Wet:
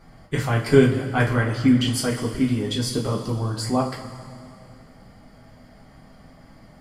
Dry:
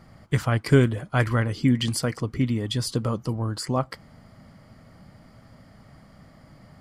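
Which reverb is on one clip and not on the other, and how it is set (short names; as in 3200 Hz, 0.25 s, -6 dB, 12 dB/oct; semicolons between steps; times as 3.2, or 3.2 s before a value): two-slope reverb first 0.28 s, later 2.5 s, from -16 dB, DRR -4 dB; gain -2.5 dB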